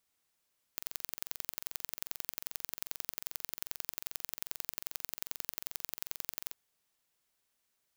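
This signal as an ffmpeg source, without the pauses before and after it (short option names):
-f lavfi -i "aevalsrc='0.398*eq(mod(n,1960),0)*(0.5+0.5*eq(mod(n,3920),0))':d=5.76:s=44100"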